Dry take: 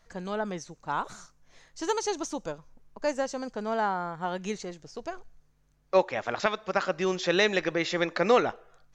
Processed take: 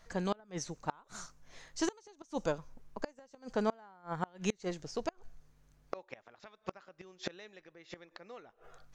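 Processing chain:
gate with flip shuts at −22 dBFS, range −31 dB
level +2.5 dB

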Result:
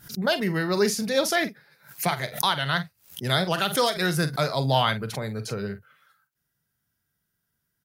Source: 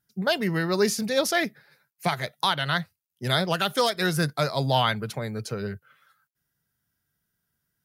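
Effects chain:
double-tracking delay 45 ms −12 dB
background raised ahead of every attack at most 150 dB per second

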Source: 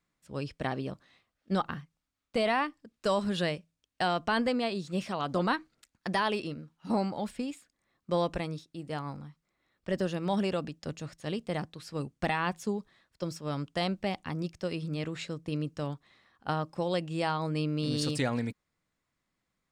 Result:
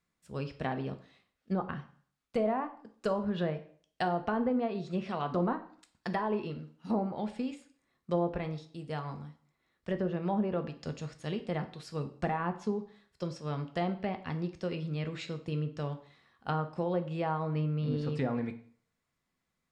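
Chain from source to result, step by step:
treble cut that deepens with the level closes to 850 Hz, closed at −24 dBFS
convolution reverb RT60 0.50 s, pre-delay 3 ms, DRR 7 dB
level −2 dB

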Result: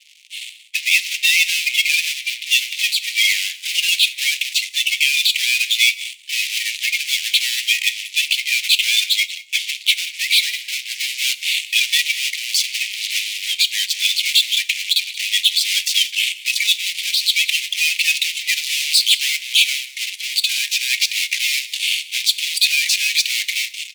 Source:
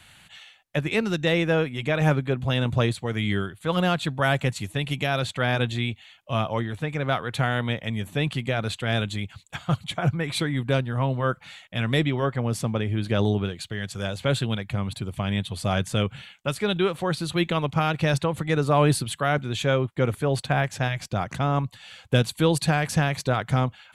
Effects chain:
spectral magnitudes quantised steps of 30 dB
low-pass filter 3,900 Hz 12 dB per octave
in parallel at −6.5 dB: fuzz pedal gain 42 dB, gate −48 dBFS
on the sum: Butterworth high-pass 2,200 Hz 72 dB per octave
single-tap delay 182 ms −18 dB
automatic gain control gain up to 14.5 dB
on a send at −13 dB: convolution reverb, pre-delay 3 ms
on the sum: level −1 dB

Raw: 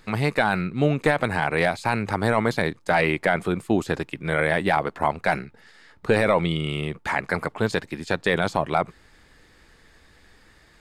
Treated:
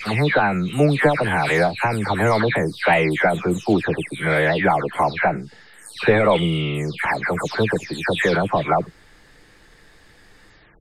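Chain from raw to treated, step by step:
every frequency bin delayed by itself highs early, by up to 309 ms
level +4.5 dB

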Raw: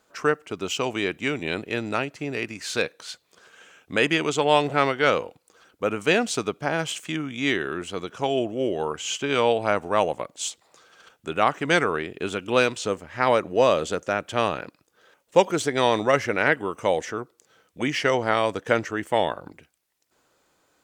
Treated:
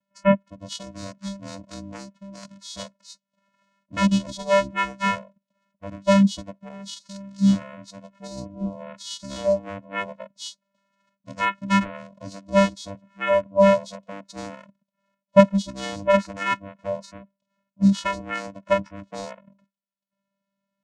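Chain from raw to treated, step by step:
sub-octave generator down 2 octaves, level −2 dB
channel vocoder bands 4, square 197 Hz
noise reduction from a noise print of the clip's start 19 dB
level +5.5 dB

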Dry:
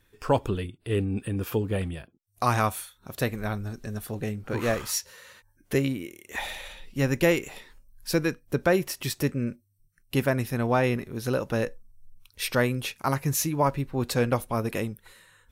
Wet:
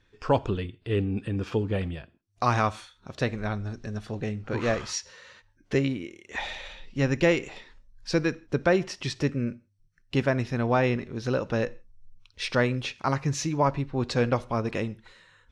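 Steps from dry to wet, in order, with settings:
low-pass filter 6,100 Hz 24 dB per octave
on a send: convolution reverb, pre-delay 51 ms, DRR 23 dB

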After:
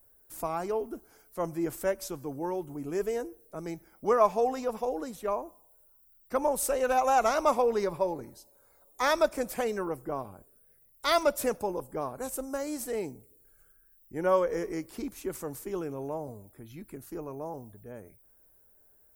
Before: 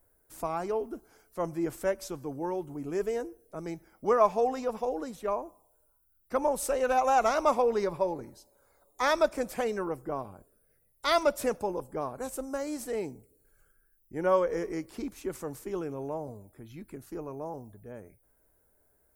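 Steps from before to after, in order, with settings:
high-shelf EQ 11,000 Hz +10.5 dB

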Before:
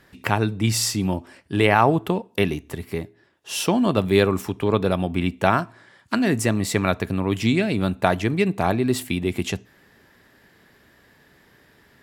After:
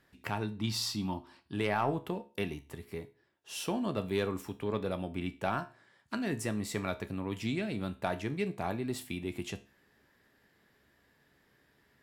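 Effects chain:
0:00.59–0:01.54: octave-band graphic EQ 250/500/1,000/2,000/4,000/8,000 Hz +4/−8/+10/−6/+10/−7 dB
soft clipping −5 dBFS, distortion −22 dB
tuned comb filter 70 Hz, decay 0.33 s, harmonics all, mix 60%
level −8 dB

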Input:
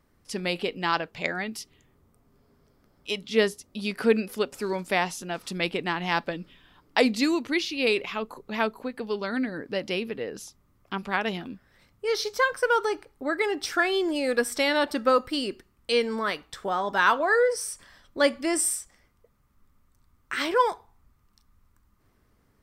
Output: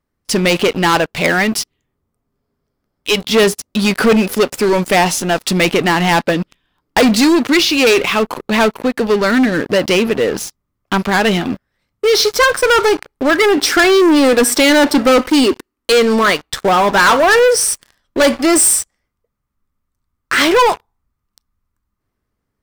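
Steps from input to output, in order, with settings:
0:13.57–0:15.93: low shelf with overshoot 210 Hz −8 dB, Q 3
leveller curve on the samples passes 5
level +1 dB

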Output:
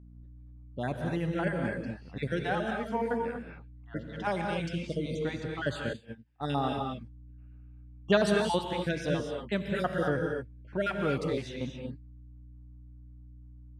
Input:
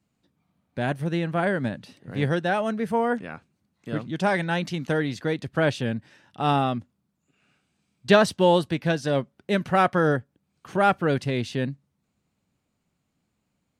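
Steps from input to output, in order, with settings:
time-frequency cells dropped at random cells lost 35%
low-pass that shuts in the quiet parts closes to 1,400 Hz, open at −24.5 dBFS
mains hum 60 Hz, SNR 16 dB
reverb whose tail is shaped and stops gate 270 ms rising, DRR 2 dB
0:05.93–0:06.50: expander for the loud parts 2.5 to 1, over −38 dBFS
level −7 dB

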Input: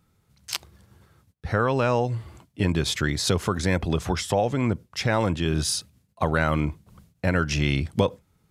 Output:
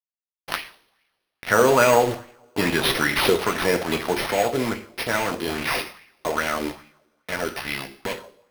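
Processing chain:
source passing by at 0:02.14, 6 m/s, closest 5.1 metres
high-pass filter 230 Hz 12 dB per octave
high-shelf EQ 4,800 Hz +4 dB
in parallel at +2 dB: speech leveller within 4 dB 0.5 s
on the sum: bit reduction 5 bits
coupled-rooms reverb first 0.49 s, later 1.8 s, from −26 dB, DRR 4.5 dB
bad sample-rate conversion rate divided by 6×, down none, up hold
auto-filter bell 2.4 Hz 360–2,400 Hz +9 dB
level −1 dB

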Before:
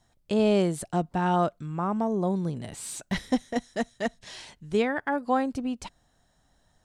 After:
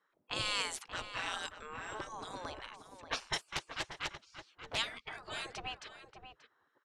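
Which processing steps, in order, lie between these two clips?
0:01.45–0:01.94: steady tone 7,600 Hz −55 dBFS
low-pass that shuts in the quiet parts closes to 910 Hz, open at −19.5 dBFS
in parallel at −0.5 dB: downward compressor, threshold −32 dBFS, peak gain reduction 13 dB
on the sum: gate on every frequency bin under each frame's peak −25 dB weak
slap from a distant wall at 100 metres, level −9 dB
0:03.48–0:04.78: highs frequency-modulated by the lows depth 0.83 ms
level +4.5 dB

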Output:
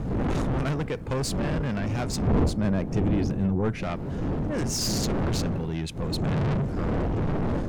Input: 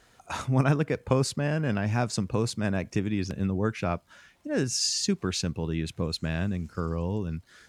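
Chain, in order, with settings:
wind on the microphone 230 Hz −23 dBFS
0:06.20–0:06.64: parametric band 130 Hz +15 dB 0.84 octaves
soft clipping −26.5 dBFS, distortion −2 dB
0:02.27–0:03.83: tilt shelving filter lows +5 dB, about 1,300 Hz
level +3 dB

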